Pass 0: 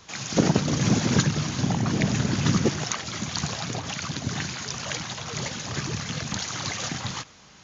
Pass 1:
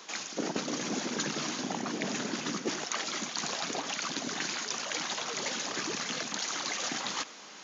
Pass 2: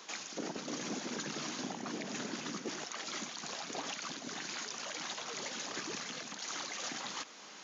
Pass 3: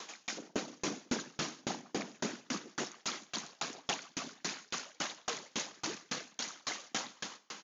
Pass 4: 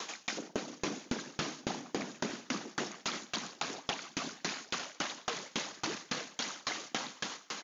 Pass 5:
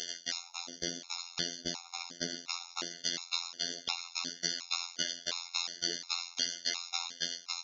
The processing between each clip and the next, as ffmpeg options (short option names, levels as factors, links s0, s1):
-af "highpass=f=250:w=0.5412,highpass=f=250:w=1.3066,areverse,acompressor=threshold=0.0178:ratio=6,areverse,volume=1.58"
-af "alimiter=level_in=1.19:limit=0.0631:level=0:latency=1:release=259,volume=0.841,volume=0.708"
-filter_complex "[0:a]asplit=2[s0][s1];[s1]aecho=0:1:149|298|447|596:0.531|0.175|0.0578|0.0191[s2];[s0][s2]amix=inputs=2:normalize=0,aeval=exprs='val(0)*pow(10,-37*if(lt(mod(3.6*n/s,1),2*abs(3.6)/1000),1-mod(3.6*n/s,1)/(2*abs(3.6)/1000),(mod(3.6*n/s,1)-2*abs(3.6)/1000)/(1-2*abs(3.6)/1000))/20)':c=same,volume=2.66"
-filter_complex "[0:a]acrossover=split=5300[s0][s1];[s1]acompressor=threshold=0.00355:ratio=4:attack=1:release=60[s2];[s0][s2]amix=inputs=2:normalize=0,aecho=1:1:906:0.158,acompressor=threshold=0.0126:ratio=6,volume=2"
-af "equalizer=f=4600:t=o:w=1.4:g=15,afftfilt=real='hypot(re,im)*cos(PI*b)':imag='0':win_size=2048:overlap=0.75,afftfilt=real='re*gt(sin(2*PI*1.4*pts/sr)*(1-2*mod(floor(b*sr/1024/710),2)),0)':imag='im*gt(sin(2*PI*1.4*pts/sr)*(1-2*mod(floor(b*sr/1024/710),2)),0)':win_size=1024:overlap=0.75"